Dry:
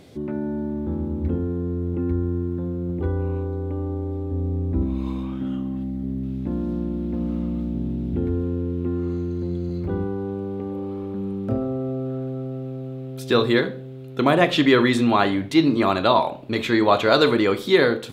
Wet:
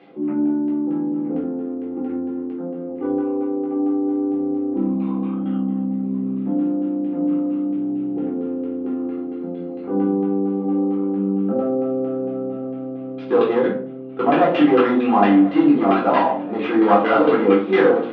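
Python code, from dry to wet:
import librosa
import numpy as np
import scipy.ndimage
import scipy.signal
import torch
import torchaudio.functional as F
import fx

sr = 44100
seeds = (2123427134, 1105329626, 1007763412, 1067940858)

y = fx.tracing_dist(x, sr, depth_ms=0.31)
y = fx.tilt_shelf(y, sr, db=-4.5, hz=1400.0)
y = np.clip(y, -10.0 ** (-14.5 / 20.0), 10.0 ** (-14.5 / 20.0))
y = fx.filter_lfo_lowpass(y, sr, shape='saw_down', hz=4.4, low_hz=660.0, high_hz=2100.0, q=1.3)
y = fx.cabinet(y, sr, low_hz=180.0, low_slope=24, high_hz=5000.0, hz=(180.0, 290.0, 500.0, 740.0, 1300.0, 2900.0), db=(8, 6, 7, 6, 3, 7))
y = fx.echo_feedback(y, sr, ms=1039, feedback_pct=53, wet_db=-17.5)
y = fx.room_shoebox(y, sr, seeds[0], volume_m3=340.0, walls='furnished', distance_m=3.8)
y = y * librosa.db_to_amplitude(-6.0)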